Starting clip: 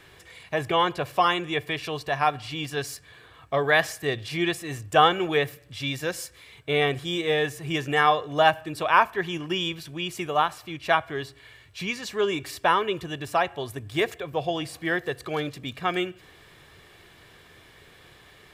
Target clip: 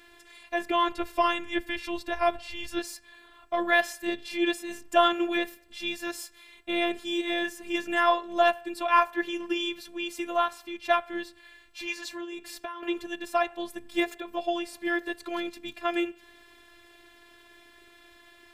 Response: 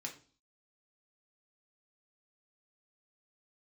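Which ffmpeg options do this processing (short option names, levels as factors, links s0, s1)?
-filter_complex "[0:a]asettb=1/sr,asplit=3[s0][s1][s2];[s0]atrim=end=0.884[s3];[s1]atrim=start=0.88:end=2.79,asetpts=PTS-STARTPTS,afade=t=in:d=0.004:c=qsin,afade=t=out:st=1.906:d=0.004:c=qsin,afreqshift=-110[s4];[s2]atrim=start=2.786[s5];[s3][s4]acrossfade=d=0.004:c1=hsin:c2=qsin[s6];[s6][s5]acrossfade=d=0.004:c1=qsin:c2=hsin,asplit=2[s7][s8];[1:a]atrim=start_sample=2205,lowpass=3900[s9];[s8][s9]afir=irnorm=-1:irlink=0,volume=0.133[s10];[s7][s10]amix=inputs=2:normalize=0,asettb=1/sr,asplit=3[s11][s12][s13];[s11]atrim=end=12.074[s14];[s12]atrim=start=12.07:end=12.83,asetpts=PTS-STARTPTS,afade=t=in:d=0.004:c=qsin,afade=t=out:st=0.756:d=0.004:c=qsin,acompressor=threshold=0.0282:ratio=20[s15];[s13]atrim=start=12.826[s16];[s14][s15]acrossfade=d=0.004:c1=hsin:c2=qsin[s17];[s17][s16]acrossfade=d=0.004:c1=qsin:c2=hsin,aeval=exprs='0.668*(cos(1*acos(clip(val(0)/0.668,-1,1)))-cos(1*PI/2))+0.00422*(cos(2*acos(clip(val(0)/0.668,-1,1)))-cos(2*PI/2))+0.00596*(cos(6*acos(clip(val(0)/0.668,-1,1)))-cos(6*PI/2))':c=same,afftfilt=real='hypot(re,im)*cos(PI*b)':imag='0':win_size=512:overlap=0.75"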